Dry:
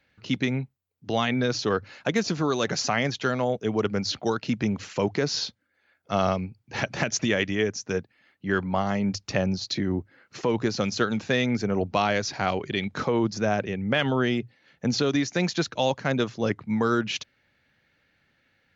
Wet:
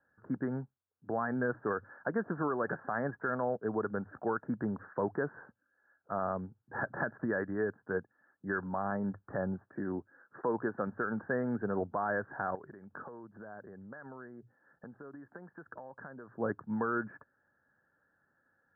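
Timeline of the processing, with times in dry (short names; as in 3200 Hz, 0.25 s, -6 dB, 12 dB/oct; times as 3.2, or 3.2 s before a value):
9.61–10.87 HPF 160 Hz 6 dB/oct
12.55–16.37 compressor 20:1, threshold -36 dBFS
whole clip: Chebyshev low-pass 1700 Hz, order 8; tilt +2.5 dB/oct; limiter -19 dBFS; gain -3 dB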